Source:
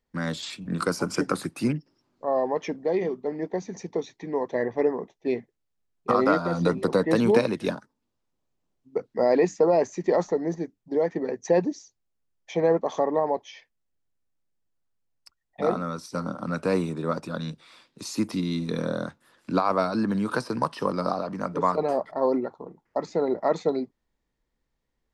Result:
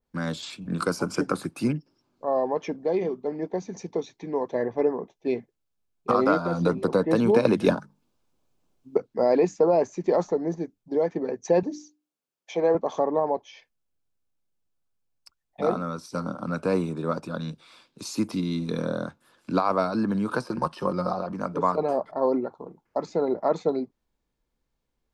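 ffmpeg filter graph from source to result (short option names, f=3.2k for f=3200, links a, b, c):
-filter_complex "[0:a]asettb=1/sr,asplit=3[a][b][c];[a]atrim=end=7.454[d];[b]atrim=start=7.45:end=8.97,asetpts=PTS-STARTPTS,afade=t=in:d=0.004:c=qsin,afade=t=out:st=1.516:d=0.004:c=qsin,bandreject=f=50:t=h:w=6,bandreject=f=100:t=h:w=6,bandreject=f=150:t=h:w=6,bandreject=f=200:t=h:w=6,acontrast=88[e];[c]atrim=start=8.966[f];[d][e]acrossfade=d=0.004:c1=hsin:c2=qsin[g];[g][f]acrossfade=d=0.004:c1=qsin:c2=hsin,asettb=1/sr,asplit=3[h][i][j];[h]atrim=end=11.634[k];[i]atrim=start=11.63:end=12.75,asetpts=PTS-STARTPTS,afade=t=in:d=0.004:c=qsin,afade=t=out:st=1.116:d=0.004:c=qsin,highpass=240,bandreject=f=50:t=h:w=6,bandreject=f=100:t=h:w=6,bandreject=f=150:t=h:w=6,bandreject=f=200:t=h:w=6,bandreject=f=250:t=h:w=6,bandreject=f=300:t=h:w=6,bandreject=f=350:t=h:w=6[l];[j]atrim=start=12.746[m];[k][l]acrossfade=d=0.004:c1=hsin:c2=qsin[n];[n][m]acrossfade=d=0.004:c1=qsin:c2=hsin,asettb=1/sr,asplit=3[o][p][q];[o]atrim=end=20.464[r];[p]atrim=start=20.46:end=21.32,asetpts=PTS-STARTPTS,afade=t=in:d=0.004:c=qsin,afade=t=out:st=0.856:d=0.004:c=qsin,aecho=1:1:5.6:0.64,atrim=end_sample=37926,tremolo=f=89:d=0.462[s];[q]atrim=start=21.316[t];[r][s]acrossfade=d=0.004:c1=hsin:c2=qsin[u];[u][t]acrossfade=d=0.004:c1=qsin:c2=hsin,bandreject=f=1.9k:w=7.6,adynamicequalizer=threshold=0.00794:dfrequency=2100:dqfactor=0.7:tfrequency=2100:tqfactor=0.7:attack=5:release=100:ratio=0.375:range=2.5:mode=cutabove:tftype=highshelf"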